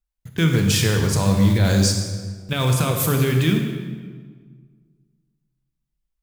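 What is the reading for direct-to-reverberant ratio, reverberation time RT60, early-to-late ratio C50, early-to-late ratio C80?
3.0 dB, 1.6 s, 4.5 dB, 6.0 dB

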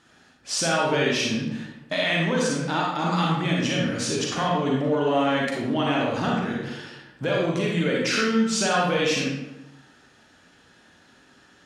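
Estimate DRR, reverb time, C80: −3.5 dB, 1.0 s, 3.0 dB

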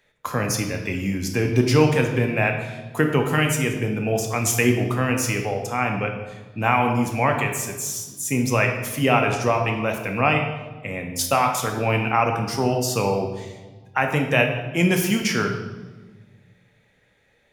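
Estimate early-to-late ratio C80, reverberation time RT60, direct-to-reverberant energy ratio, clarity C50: 8.0 dB, 1.3 s, 3.0 dB, 6.0 dB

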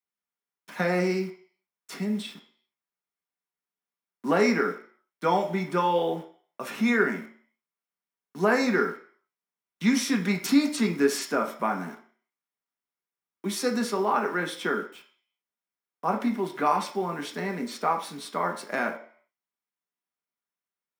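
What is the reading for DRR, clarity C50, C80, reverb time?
2.0 dB, 10.0 dB, 14.0 dB, 0.50 s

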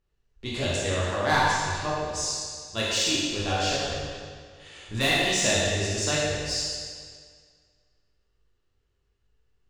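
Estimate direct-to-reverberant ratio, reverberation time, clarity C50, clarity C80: −7.0 dB, 1.9 s, −2.5 dB, −0.5 dB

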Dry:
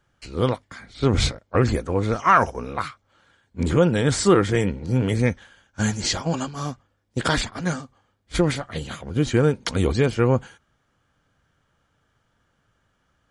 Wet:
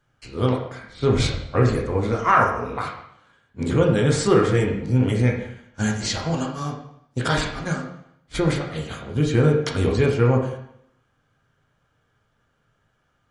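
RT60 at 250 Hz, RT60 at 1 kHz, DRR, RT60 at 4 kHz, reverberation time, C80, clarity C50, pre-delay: 0.70 s, 0.75 s, −0.5 dB, 0.70 s, 0.70 s, 8.5 dB, 5.5 dB, 5 ms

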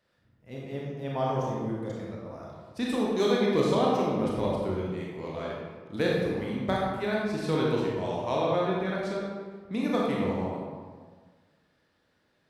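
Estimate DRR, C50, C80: −4.5 dB, −1.5 dB, 1.0 dB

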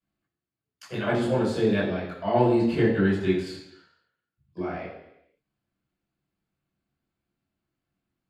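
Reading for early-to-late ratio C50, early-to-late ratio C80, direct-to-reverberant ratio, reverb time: 4.5 dB, 7.5 dB, −7.0 dB, 0.85 s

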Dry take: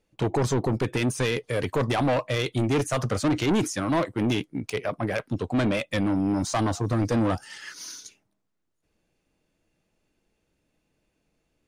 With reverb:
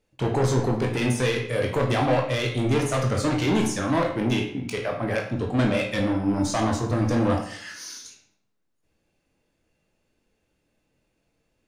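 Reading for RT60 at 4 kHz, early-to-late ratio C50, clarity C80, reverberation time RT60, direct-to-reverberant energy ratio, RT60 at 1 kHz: 0.55 s, 6.0 dB, 9.5 dB, 0.65 s, 0.0 dB, 0.65 s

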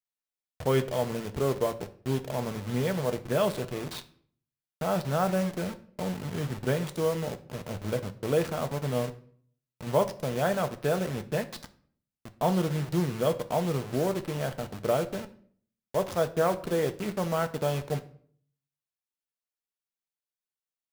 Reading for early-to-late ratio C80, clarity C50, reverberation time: 20.0 dB, 16.0 dB, 0.55 s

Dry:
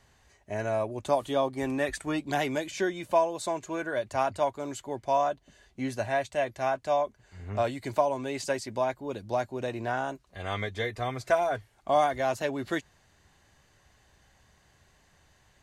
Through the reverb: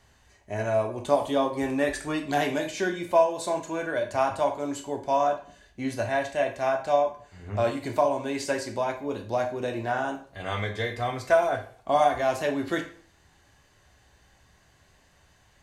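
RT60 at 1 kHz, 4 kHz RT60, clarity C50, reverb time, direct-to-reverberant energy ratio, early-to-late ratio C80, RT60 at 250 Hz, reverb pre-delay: 0.50 s, 0.40 s, 10.0 dB, 0.50 s, 3.5 dB, 14.5 dB, 0.50 s, 12 ms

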